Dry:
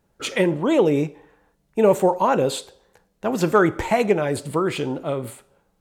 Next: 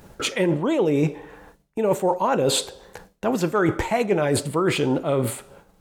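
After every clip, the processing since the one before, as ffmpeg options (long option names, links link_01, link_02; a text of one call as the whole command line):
ffmpeg -i in.wav -af "areverse,acompressor=threshold=-27dB:ratio=8,areverse,agate=range=-33dB:threshold=-56dB:ratio=3:detection=peak,acompressor=mode=upward:threshold=-36dB:ratio=2.5,volume=9dB" out.wav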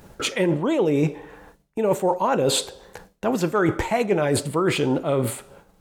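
ffmpeg -i in.wav -af anull out.wav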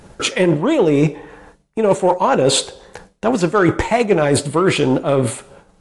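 ffmpeg -i in.wav -af "aeval=exprs='0.376*(cos(1*acos(clip(val(0)/0.376,-1,1)))-cos(1*PI/2))+0.0106*(cos(7*acos(clip(val(0)/0.376,-1,1)))-cos(7*PI/2))':channel_layout=same,volume=7dB" -ar 24000 -c:a libmp3lame -b:a 64k out.mp3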